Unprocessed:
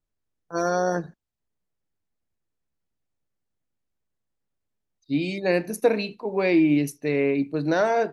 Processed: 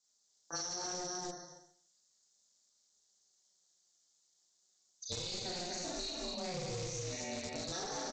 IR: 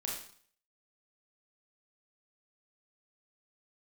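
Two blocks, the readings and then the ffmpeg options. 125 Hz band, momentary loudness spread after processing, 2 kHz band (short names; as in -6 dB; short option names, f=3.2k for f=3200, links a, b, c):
-14.0 dB, 6 LU, -18.0 dB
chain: -filter_complex "[1:a]atrim=start_sample=2205,asetrate=39690,aresample=44100[a];[0:a][a]afir=irnorm=-1:irlink=0,acrossover=split=300|5900[b][c][d];[b]aeval=exprs='val(0)*gte(abs(val(0)),0.0422)':c=same[e];[e][c][d]amix=inputs=3:normalize=0,aexciter=amount=14.1:drive=5.9:freq=4k,flanger=delay=4.8:depth=1.1:regen=50:speed=0.36:shape=triangular,alimiter=limit=-13.5dB:level=0:latency=1:release=155,aecho=1:1:240:0.631,aresample=16000,asoftclip=type=tanh:threshold=-23.5dB,aresample=44100,aeval=exprs='val(0)*sin(2*PI*180*n/s)':c=same,acompressor=threshold=-44dB:ratio=8,volume=6dB"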